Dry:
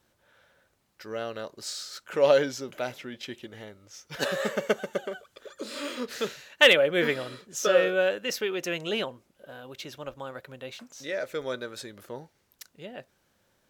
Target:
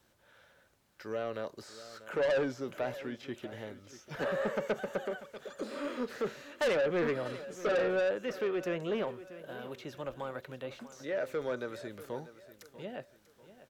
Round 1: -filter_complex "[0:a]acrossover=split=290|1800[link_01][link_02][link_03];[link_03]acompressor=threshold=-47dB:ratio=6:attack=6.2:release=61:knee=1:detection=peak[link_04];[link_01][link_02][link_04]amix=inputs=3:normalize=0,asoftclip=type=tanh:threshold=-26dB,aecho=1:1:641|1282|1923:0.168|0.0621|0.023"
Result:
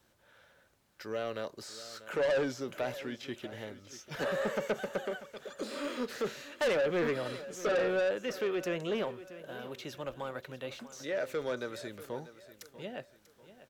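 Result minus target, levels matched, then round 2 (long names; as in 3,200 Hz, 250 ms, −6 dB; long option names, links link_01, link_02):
downward compressor: peak gain reduction −7 dB
-filter_complex "[0:a]acrossover=split=290|1800[link_01][link_02][link_03];[link_03]acompressor=threshold=-55.5dB:ratio=6:attack=6.2:release=61:knee=1:detection=peak[link_04];[link_01][link_02][link_04]amix=inputs=3:normalize=0,asoftclip=type=tanh:threshold=-26dB,aecho=1:1:641|1282|1923:0.168|0.0621|0.023"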